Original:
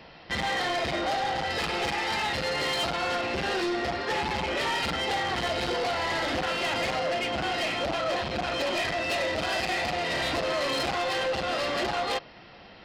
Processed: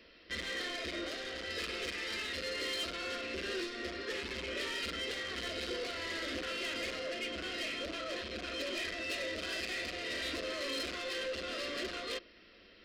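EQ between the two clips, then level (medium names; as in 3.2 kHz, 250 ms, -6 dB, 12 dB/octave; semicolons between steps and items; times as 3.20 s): hum notches 50/100/150/200/250/300/350 Hz; static phaser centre 340 Hz, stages 4; -6.5 dB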